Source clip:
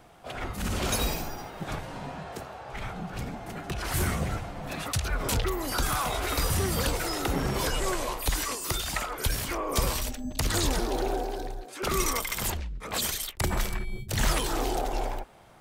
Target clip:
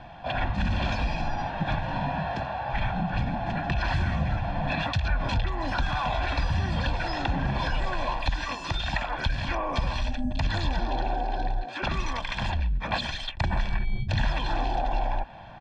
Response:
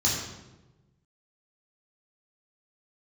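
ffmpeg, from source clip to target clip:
-af "acompressor=threshold=-33dB:ratio=6,lowpass=frequency=3900:width=0.5412,lowpass=frequency=3900:width=1.3066,aecho=1:1:1.2:0.82,volume=7dB"

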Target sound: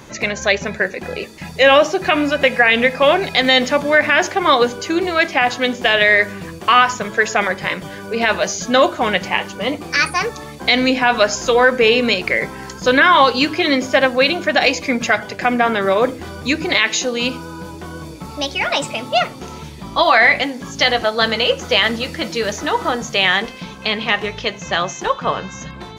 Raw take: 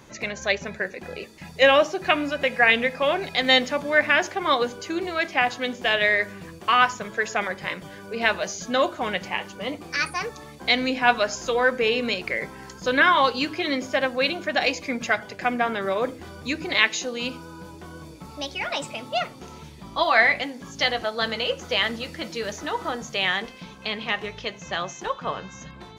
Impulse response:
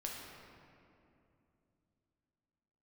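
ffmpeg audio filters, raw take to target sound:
-af "alimiter=level_in=10.5dB:limit=-1dB:release=50:level=0:latency=1,volume=-1dB"

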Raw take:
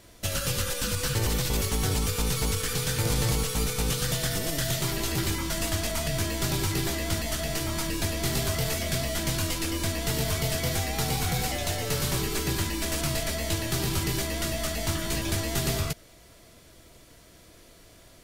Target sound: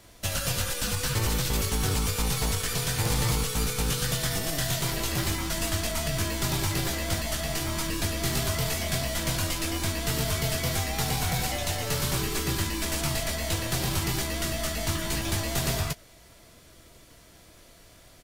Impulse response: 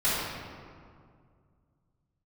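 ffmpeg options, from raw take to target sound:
-filter_complex "[0:a]acrossover=split=360[link_01][link_02];[link_01]acrusher=samples=41:mix=1:aa=0.000001:lfo=1:lforange=24.6:lforate=0.46[link_03];[link_02]asplit=2[link_04][link_05];[link_05]adelay=19,volume=-13dB[link_06];[link_04][link_06]amix=inputs=2:normalize=0[link_07];[link_03][link_07]amix=inputs=2:normalize=0"

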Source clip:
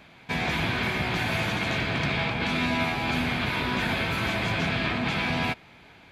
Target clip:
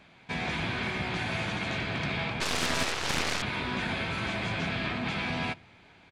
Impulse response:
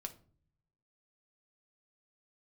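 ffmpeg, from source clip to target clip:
-filter_complex "[0:a]aresample=22050,aresample=44100,asplit=2[link_01][link_02];[1:a]atrim=start_sample=2205[link_03];[link_02][link_03]afir=irnorm=-1:irlink=0,volume=-9.5dB[link_04];[link_01][link_04]amix=inputs=2:normalize=0,asettb=1/sr,asplit=3[link_05][link_06][link_07];[link_05]atrim=end=2.404[link_08];[link_06]atrim=start=2.4:end=3.42,asetpts=PTS-STARTPTS,afade=type=in:duration=0.004:curve=qsin,afade=type=out:start_time=1.016:duration=0.004:curve=qsin,aeval=exprs='0.224*(cos(1*acos(clip(val(0)/0.224,-1,1)))-cos(1*PI/2))+0.0447*(cos(6*acos(clip(val(0)/0.224,-1,1)))-cos(6*PI/2))+0.0891*(cos(7*acos(clip(val(0)/0.224,-1,1)))-cos(7*PI/2))':channel_layout=same[link_09];[link_07]atrim=start=3.416[link_10];[link_08][link_09]acrossfade=duration=0.004:curve1=hsin:curve2=qsin[link_11];[link_11][link_10]acrossfade=duration=0.004:curve1=qsin:curve2=hsin,volume=-6.5dB"

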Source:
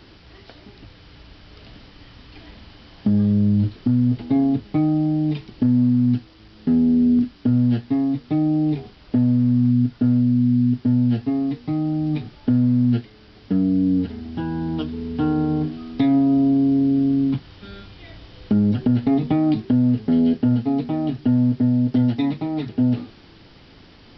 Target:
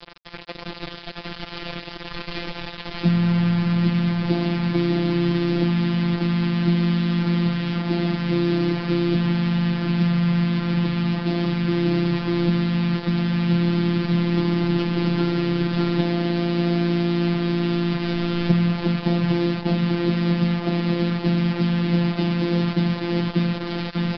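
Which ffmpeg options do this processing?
ffmpeg -i in.wav -filter_complex "[0:a]asplit=3[link_01][link_02][link_03];[link_02]asetrate=35002,aresample=44100,atempo=1.25992,volume=-1dB[link_04];[link_03]asetrate=55563,aresample=44100,atempo=0.793701,volume=-11dB[link_05];[link_01][link_04][link_05]amix=inputs=3:normalize=0,asplit=2[link_06][link_07];[link_07]aecho=0:1:593|1186|1779|2372:0.596|0.203|0.0689|0.0234[link_08];[link_06][link_08]amix=inputs=2:normalize=0,acompressor=threshold=-24dB:ratio=10,acrusher=bits=5:mix=0:aa=0.000001,aresample=11025,aresample=44100,acontrast=77,afftfilt=real='hypot(re,im)*cos(PI*b)':imag='0':win_size=1024:overlap=0.75,volume=4dB" out.wav

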